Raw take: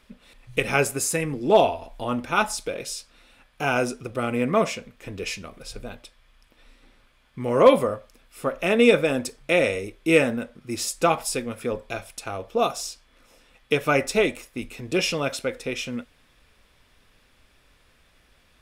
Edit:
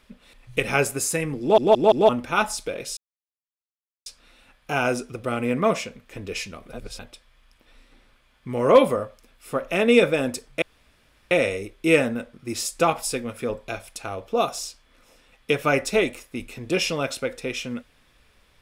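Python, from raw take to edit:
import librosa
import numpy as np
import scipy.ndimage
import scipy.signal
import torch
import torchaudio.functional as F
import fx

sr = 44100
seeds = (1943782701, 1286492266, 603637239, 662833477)

y = fx.edit(x, sr, fx.stutter_over(start_s=1.41, slice_s=0.17, count=4),
    fx.insert_silence(at_s=2.97, length_s=1.09),
    fx.reverse_span(start_s=5.64, length_s=0.26),
    fx.insert_room_tone(at_s=9.53, length_s=0.69), tone=tone)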